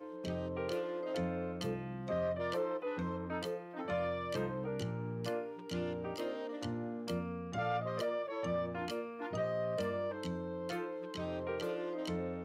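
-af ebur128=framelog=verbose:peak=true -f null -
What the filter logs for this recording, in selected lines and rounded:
Integrated loudness:
  I:         -38.4 LUFS
  Threshold: -48.4 LUFS
Loudness range:
  LRA:         1.6 LU
  Threshold: -58.3 LUFS
  LRA low:   -39.1 LUFS
  LRA high:  -37.5 LUFS
True peak:
  Peak:      -26.5 dBFS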